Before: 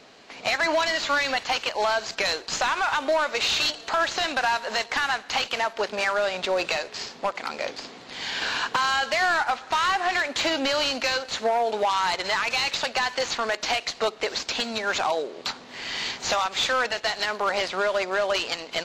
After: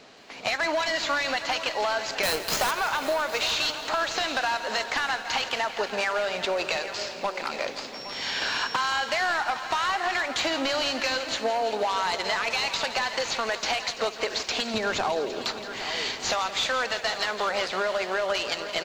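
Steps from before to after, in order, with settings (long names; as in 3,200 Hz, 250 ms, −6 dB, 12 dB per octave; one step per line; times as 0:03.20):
0:02.23–0:02.71: each half-wave held at its own peak
0:07.93–0:08.73: steady tone 5,500 Hz −39 dBFS
0:14.74–0:15.45: low-shelf EQ 460 Hz +10 dB
single-tap delay 811 ms −15.5 dB
downward compressor, threshold −23 dBFS, peak gain reduction 5.5 dB
feedback echo at a low word length 168 ms, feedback 80%, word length 9 bits, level −14 dB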